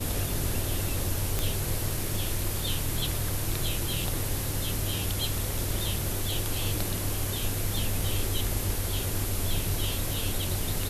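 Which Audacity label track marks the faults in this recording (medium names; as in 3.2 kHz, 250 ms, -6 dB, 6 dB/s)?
1.390000	1.390000	pop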